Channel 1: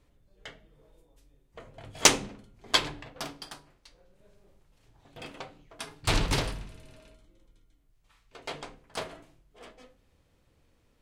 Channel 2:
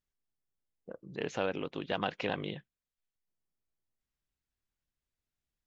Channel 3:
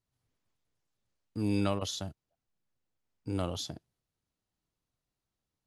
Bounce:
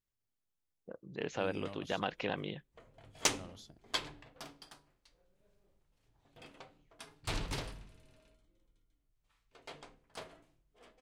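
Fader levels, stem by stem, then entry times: −11.5, −2.5, −17.0 decibels; 1.20, 0.00, 0.00 seconds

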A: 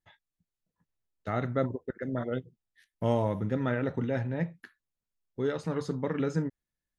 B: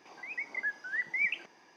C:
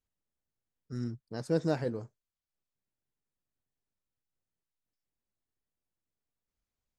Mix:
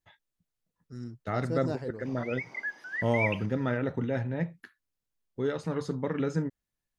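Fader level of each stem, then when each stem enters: 0.0, −1.0, −4.5 decibels; 0.00, 2.00, 0.00 seconds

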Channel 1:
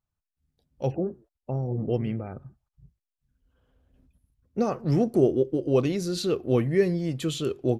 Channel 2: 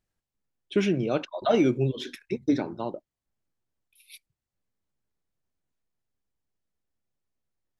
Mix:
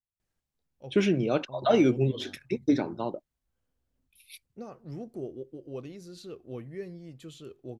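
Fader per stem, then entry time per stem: −17.0, 0.0 decibels; 0.00, 0.20 seconds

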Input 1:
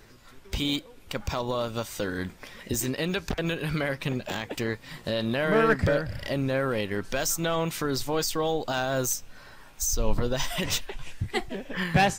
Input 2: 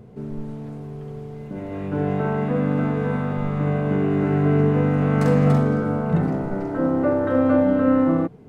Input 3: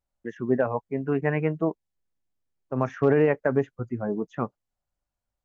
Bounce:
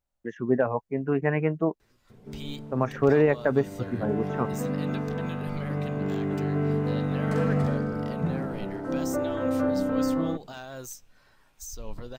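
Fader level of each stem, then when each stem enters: −13.0, −8.0, 0.0 decibels; 1.80, 2.10, 0.00 seconds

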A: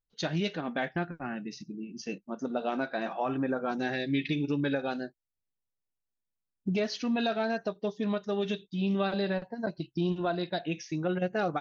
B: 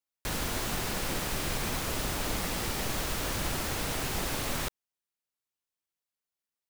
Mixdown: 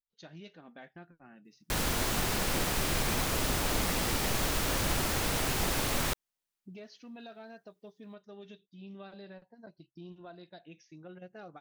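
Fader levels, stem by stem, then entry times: −18.5, +2.0 decibels; 0.00, 1.45 seconds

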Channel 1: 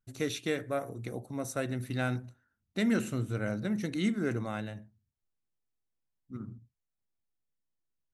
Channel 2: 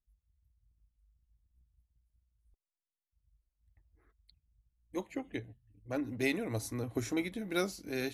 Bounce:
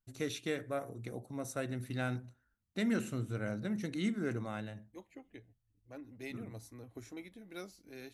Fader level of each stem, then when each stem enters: −4.5, −13.5 decibels; 0.00, 0.00 seconds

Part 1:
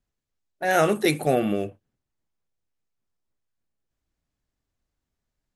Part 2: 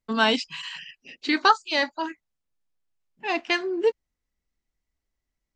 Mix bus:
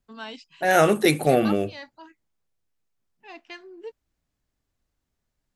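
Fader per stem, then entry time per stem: +2.5, −17.0 decibels; 0.00, 0.00 seconds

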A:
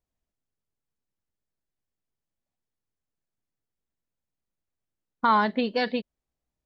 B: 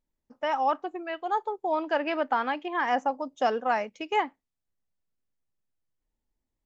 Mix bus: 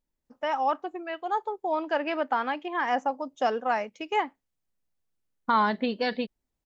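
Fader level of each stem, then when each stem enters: −2.0, −0.5 decibels; 0.25, 0.00 seconds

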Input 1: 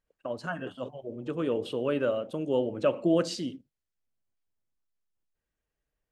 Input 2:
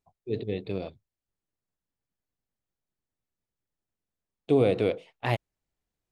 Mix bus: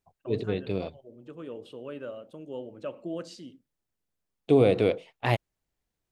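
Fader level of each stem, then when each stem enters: −11.0, +2.0 decibels; 0.00, 0.00 seconds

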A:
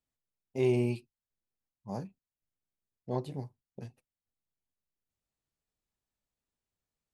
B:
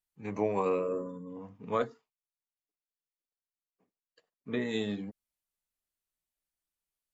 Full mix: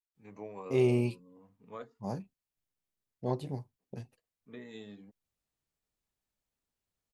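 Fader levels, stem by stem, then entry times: +1.0, −14.5 decibels; 0.15, 0.00 seconds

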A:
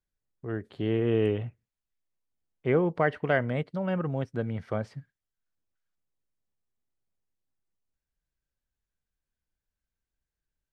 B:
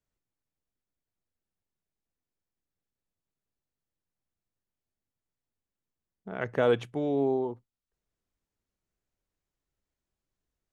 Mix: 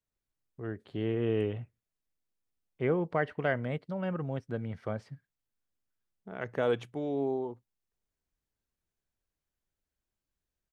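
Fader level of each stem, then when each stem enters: −4.5, −4.5 decibels; 0.15, 0.00 seconds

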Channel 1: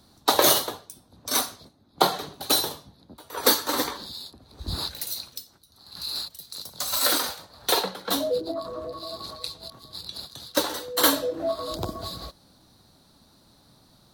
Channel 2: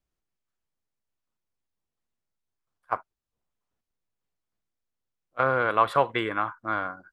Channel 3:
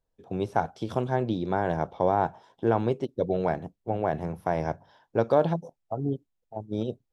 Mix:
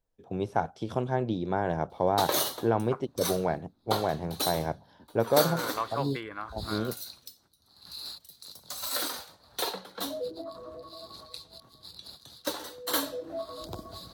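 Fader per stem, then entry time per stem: −9.0, −11.0, −2.0 decibels; 1.90, 0.00, 0.00 seconds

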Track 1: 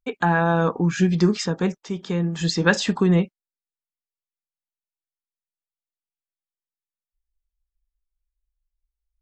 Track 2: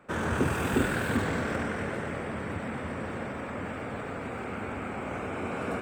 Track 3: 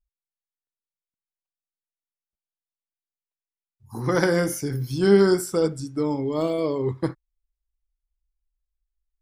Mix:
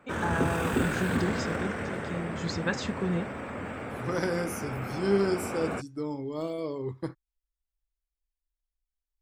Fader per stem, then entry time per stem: −12.0, −1.0, −9.0 decibels; 0.00, 0.00, 0.00 seconds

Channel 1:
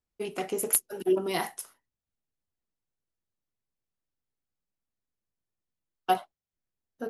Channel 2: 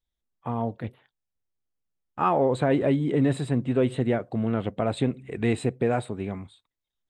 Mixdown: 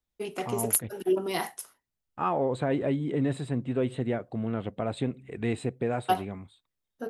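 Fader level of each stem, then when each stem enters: −0.5, −5.0 decibels; 0.00, 0.00 seconds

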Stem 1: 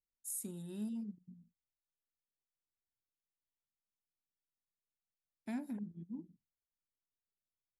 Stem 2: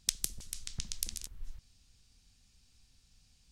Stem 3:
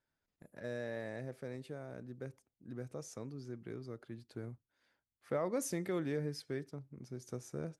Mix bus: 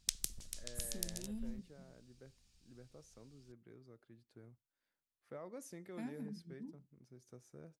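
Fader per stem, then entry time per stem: −4.5, −5.0, −13.5 decibels; 0.50, 0.00, 0.00 seconds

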